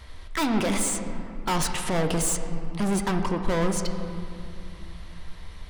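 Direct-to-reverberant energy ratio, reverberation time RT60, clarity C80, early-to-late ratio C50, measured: 5.0 dB, 2.5 s, 7.5 dB, 6.5 dB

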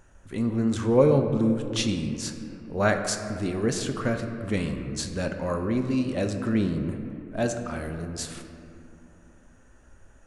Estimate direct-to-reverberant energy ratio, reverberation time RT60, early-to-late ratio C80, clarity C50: 5.0 dB, 2.6 s, 7.5 dB, 6.5 dB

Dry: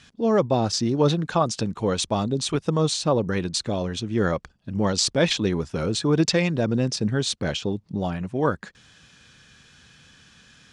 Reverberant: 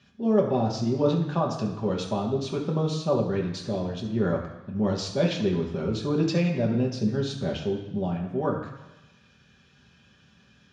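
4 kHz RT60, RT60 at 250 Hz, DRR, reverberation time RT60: 1.1 s, 1.0 s, -2.0 dB, 1.1 s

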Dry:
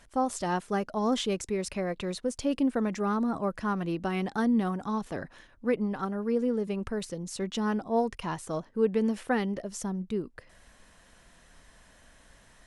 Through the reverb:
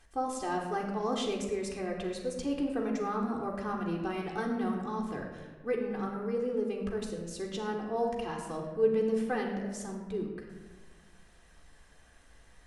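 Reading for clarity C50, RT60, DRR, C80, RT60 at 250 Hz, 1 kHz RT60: 4.0 dB, 1.3 s, -2.0 dB, 6.0 dB, 1.8 s, 1.2 s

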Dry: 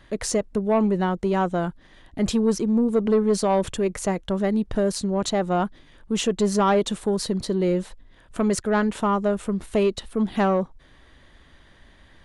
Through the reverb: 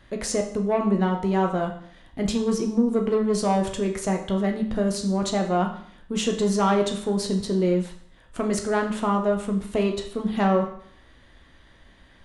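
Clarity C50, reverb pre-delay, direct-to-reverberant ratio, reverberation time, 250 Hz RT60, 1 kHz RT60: 9.0 dB, 10 ms, 2.5 dB, 0.60 s, 0.60 s, 0.60 s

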